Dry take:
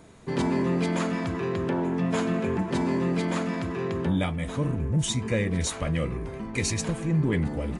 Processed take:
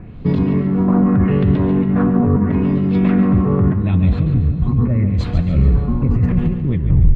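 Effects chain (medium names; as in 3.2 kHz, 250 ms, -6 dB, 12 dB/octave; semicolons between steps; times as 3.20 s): tape stop on the ending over 0.46 s; tone controls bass +12 dB, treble -3 dB; compressor with a negative ratio -21 dBFS, ratio -1; LFO low-pass sine 0.73 Hz 950–3700 Hz; tilt EQ -2.5 dB/octave; feedback delay 154 ms, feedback 42%, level -9.5 dB; reverberation RT60 3.0 s, pre-delay 194 ms, DRR 13.5 dB; speed mistake 44.1 kHz file played as 48 kHz; trim -1 dB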